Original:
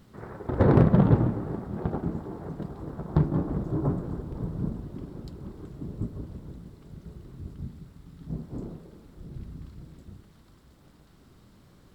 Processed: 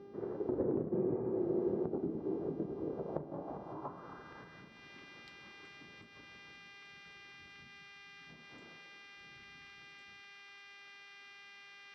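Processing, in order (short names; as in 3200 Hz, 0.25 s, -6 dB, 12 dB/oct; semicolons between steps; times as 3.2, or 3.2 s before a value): buzz 400 Hz, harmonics 15, -54 dBFS -3 dB/oct; compressor 6:1, threshold -32 dBFS, peak gain reduction 18 dB; spectral repair 0.95–1.76, 290–2600 Hz after; band-pass sweep 370 Hz -> 2200 Hz, 2.75–4.74; gain +6 dB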